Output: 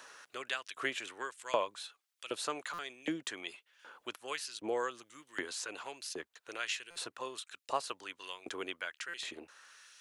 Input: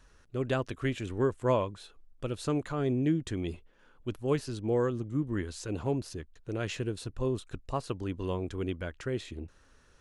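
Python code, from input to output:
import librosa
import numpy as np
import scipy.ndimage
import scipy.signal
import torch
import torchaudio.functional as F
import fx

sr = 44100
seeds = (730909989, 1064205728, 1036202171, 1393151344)

y = fx.filter_lfo_highpass(x, sr, shape='saw_up', hz=1.3, low_hz=540.0, high_hz=3200.0, q=0.76)
y = fx.buffer_glitch(y, sr, at_s=(2.73, 6.9, 9.08), block=256, repeats=9)
y = fx.band_squash(y, sr, depth_pct=40)
y = y * 10.0 ** (4.5 / 20.0)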